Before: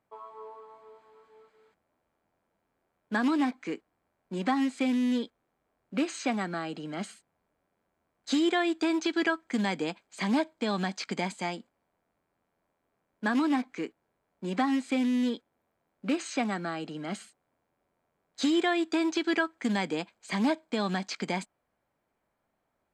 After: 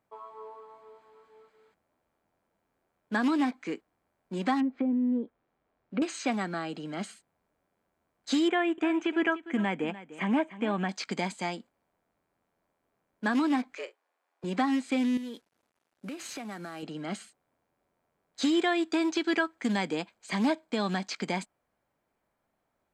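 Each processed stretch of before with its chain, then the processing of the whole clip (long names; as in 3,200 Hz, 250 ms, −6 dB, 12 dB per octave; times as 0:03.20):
0:04.60–0:06.02: low-pass filter 4,400 Hz + treble cut that deepens with the level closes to 550 Hz, closed at −25.5 dBFS
0:08.48–0:10.89: drawn EQ curve 3,000 Hz 0 dB, 4,400 Hz −25 dB, 6,500 Hz −12 dB + single-tap delay 298 ms −15.5 dB
0:13.75–0:14.44: meter weighting curve A + frequency shifter +110 Hz + double-tracking delay 43 ms −14 dB
0:15.17–0:16.83: variable-slope delta modulation 64 kbit/s + high-pass filter 120 Hz 6 dB per octave + downward compressor 4 to 1, threshold −37 dBFS
whole clip: no processing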